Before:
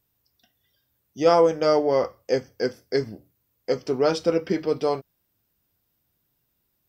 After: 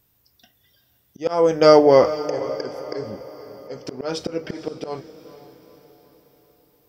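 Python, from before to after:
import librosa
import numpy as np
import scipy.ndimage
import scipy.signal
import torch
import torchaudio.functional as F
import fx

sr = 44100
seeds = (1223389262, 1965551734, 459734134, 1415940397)

y = fx.auto_swell(x, sr, attack_ms=378.0)
y = fx.echo_diffused(y, sr, ms=469, feedback_pct=50, wet_db=-14.0)
y = y * 10.0 ** (8.5 / 20.0)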